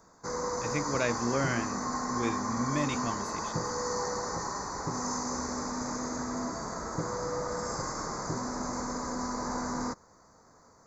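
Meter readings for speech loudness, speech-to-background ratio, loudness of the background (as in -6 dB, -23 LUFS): -33.5 LUFS, 0.5 dB, -34.0 LUFS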